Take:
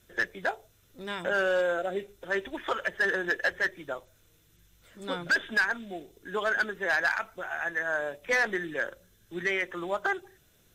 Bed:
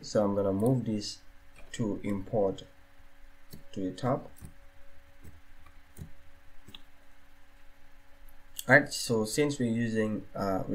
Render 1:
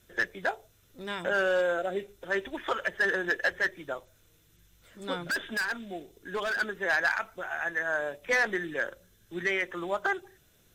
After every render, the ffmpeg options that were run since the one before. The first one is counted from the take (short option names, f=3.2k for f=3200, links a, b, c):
-filter_complex "[0:a]asplit=3[a][b][c];[a]afade=t=out:st=5.23:d=0.02[d];[b]asoftclip=type=hard:threshold=-27dB,afade=t=in:st=5.23:d=0.02,afade=t=out:st=6.6:d=0.02[e];[c]afade=t=in:st=6.6:d=0.02[f];[d][e][f]amix=inputs=3:normalize=0"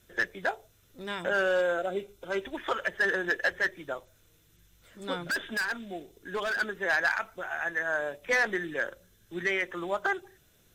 -filter_complex "[0:a]asettb=1/sr,asplit=3[a][b][c];[a]atrim=end=1.864[d];[b]atrim=start=1.86:end=2.42,asetpts=PTS-STARTPTS,afade=t=in:d=0.004:c=qsin,afade=t=out:st=0.556:d=0.004:c=qsin,asuperstop=centerf=1800:order=4:qfactor=5.4[e];[c]atrim=start=2.416[f];[d][e]acrossfade=d=0.004:c1=hsin:c2=qsin[g];[g][f]acrossfade=d=0.004:c1=qsin:c2=hsin"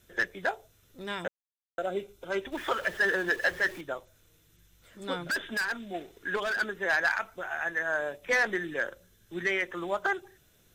-filter_complex "[0:a]asettb=1/sr,asplit=3[a][b][c];[a]atrim=end=2.524[d];[b]atrim=start=2.52:end=3.81,asetpts=PTS-STARTPTS,afade=t=in:d=0.004:c=qsin,afade=t=out:st=1.286:d=0.004:c=qsin,aeval=exprs='val(0)+0.5*0.00841*sgn(val(0))':c=same[e];[c]atrim=start=3.806[f];[d][e]acrossfade=d=0.004:c1=hsin:c2=qsin[g];[g][f]acrossfade=d=0.004:c1=qsin:c2=hsin,asettb=1/sr,asplit=3[h][i][j];[h]atrim=end=5.944[k];[i]atrim=start=5.94:end=6.36,asetpts=PTS-STARTPTS,afade=t=in:d=0.004:c=qsin,afade=t=out:st=0.416:d=0.004:c=qsin,equalizer=f=1.6k:w=0.58:g=10.5[l];[j]atrim=start=6.356[m];[k][l]acrossfade=d=0.004:c1=hsin:c2=qsin[n];[n][m]acrossfade=d=0.004:c1=qsin:c2=hsin,asplit=3[o][p][q];[o]atrim=end=1.28,asetpts=PTS-STARTPTS,afade=t=out:st=1.276:d=0.004:c=hsin[r];[p]atrim=start=1.28:end=1.78,asetpts=PTS-STARTPTS,volume=0[s];[q]atrim=start=1.78,asetpts=PTS-STARTPTS,afade=t=in:d=0.004:c=hsin[t];[r][s][t]concat=n=3:v=0:a=1"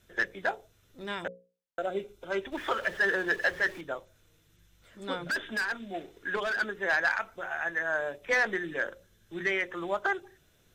-af "highshelf=f=7.9k:g=-8,bandreject=f=60:t=h:w=6,bandreject=f=120:t=h:w=6,bandreject=f=180:t=h:w=6,bandreject=f=240:t=h:w=6,bandreject=f=300:t=h:w=6,bandreject=f=360:t=h:w=6,bandreject=f=420:t=h:w=6,bandreject=f=480:t=h:w=6,bandreject=f=540:t=h:w=6"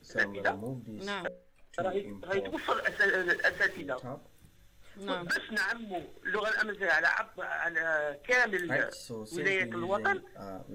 -filter_complex "[1:a]volume=-12dB[a];[0:a][a]amix=inputs=2:normalize=0"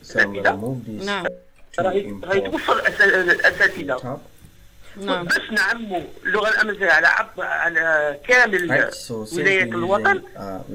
-af "volume=12dB"